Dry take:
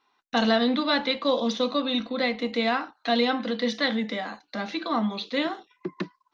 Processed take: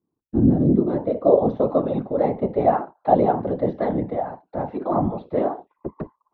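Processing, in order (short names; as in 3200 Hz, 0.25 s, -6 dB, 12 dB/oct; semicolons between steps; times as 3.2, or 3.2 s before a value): low-pass sweep 230 Hz -> 690 Hz, 0.32–1.46; whisperiser; gain +2 dB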